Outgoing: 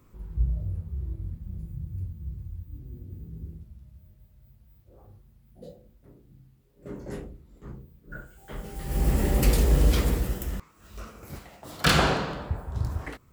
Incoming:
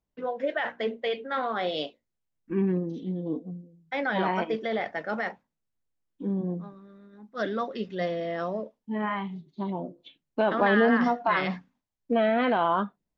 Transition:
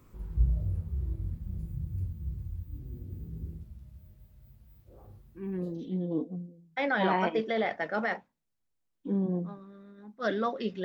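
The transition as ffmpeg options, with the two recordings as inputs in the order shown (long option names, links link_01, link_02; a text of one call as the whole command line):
ffmpeg -i cue0.wav -i cue1.wav -filter_complex "[0:a]apad=whole_dur=10.84,atrim=end=10.84,atrim=end=6.01,asetpts=PTS-STARTPTS[link_01];[1:a]atrim=start=2.42:end=7.99,asetpts=PTS-STARTPTS[link_02];[link_01][link_02]acrossfade=duration=0.74:curve1=tri:curve2=tri" out.wav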